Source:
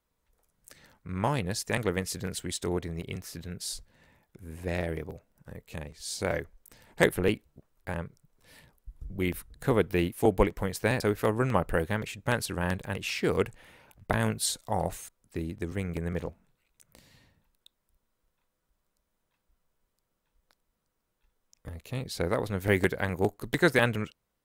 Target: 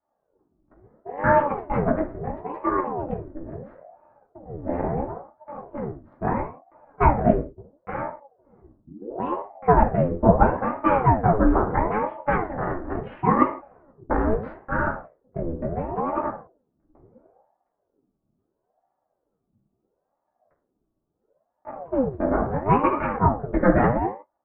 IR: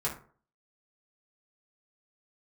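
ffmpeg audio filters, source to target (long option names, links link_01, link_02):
-filter_complex "[0:a]adynamicsmooth=sensitivity=6.5:basefreq=580,lowpass=frequency=1300:width=0.5412,lowpass=frequency=1300:width=1.3066[link_01];[1:a]atrim=start_sample=2205,afade=type=out:start_time=0.24:duration=0.01,atrim=end_sample=11025[link_02];[link_01][link_02]afir=irnorm=-1:irlink=0,aeval=exprs='val(0)*sin(2*PI*460*n/s+460*0.65/0.74*sin(2*PI*0.74*n/s))':channel_layout=same,volume=3dB"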